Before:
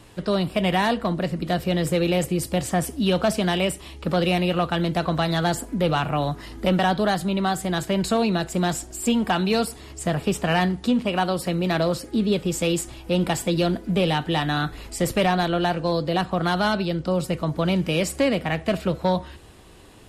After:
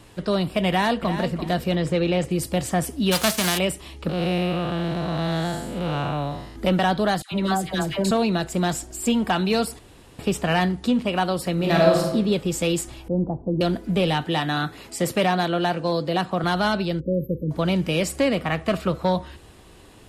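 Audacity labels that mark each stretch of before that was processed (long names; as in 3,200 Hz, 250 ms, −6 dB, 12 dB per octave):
0.680000	1.170000	delay throw 340 ms, feedback 25%, level −10 dB
1.750000	2.310000	high-frequency loss of the air 79 metres
3.110000	3.570000	spectral envelope flattened exponent 0.3
4.090000	6.560000	spectrum smeared in time width 236 ms
7.220000	8.110000	all-pass dispersion lows, late by 97 ms, half as late at 1,000 Hz
9.790000	10.190000	fill with room tone
11.530000	12.120000	thrown reverb, RT60 0.93 s, DRR −2 dB
13.080000	13.610000	Bessel low-pass filter 510 Hz, order 8
14.250000	16.440000	high-pass filter 130 Hz
17.000000	17.510000	linear-phase brick-wall band-stop 580–12,000 Hz
18.360000	19.050000	parametric band 1,200 Hz +9.5 dB 0.27 octaves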